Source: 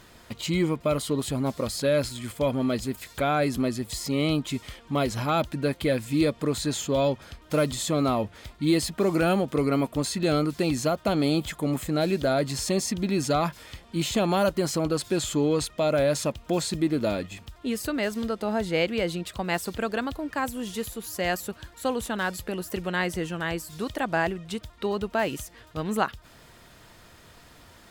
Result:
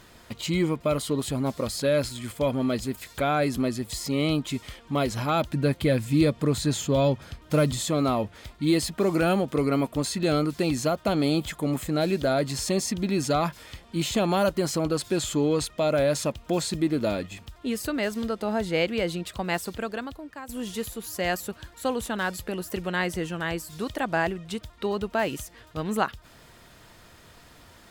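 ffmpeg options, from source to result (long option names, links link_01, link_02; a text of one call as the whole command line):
ffmpeg -i in.wav -filter_complex "[0:a]asettb=1/sr,asplit=3[link_01][link_02][link_03];[link_01]atrim=end=5.504[link_04];[link_02]atrim=start=5.5:end=7.82,asetpts=PTS-STARTPTS,afade=type=in:duration=0.004:curve=qsin,afade=type=out:start_time=2.316:duration=0.004:curve=qsin,equalizer=frequency=120:width=0.79:gain=6.5[link_05];[link_03]atrim=start=7.816[link_06];[link_04][link_05]acrossfade=duration=0.004:curve1=hsin:curve2=qsin[link_07];[link_07][link_06]acrossfade=duration=0.004:curve1=qsin:curve2=hsin,asplit=2[link_08][link_09];[link_08]atrim=end=20.49,asetpts=PTS-STARTPTS,afade=type=out:start_time=19.49:duration=1:silence=0.188365[link_10];[link_09]atrim=start=20.49,asetpts=PTS-STARTPTS,afade=type=in:duration=0.004:curve=hsin:silence=0.188365[link_11];[link_10][link_11]concat=n=2:v=0:a=1" out.wav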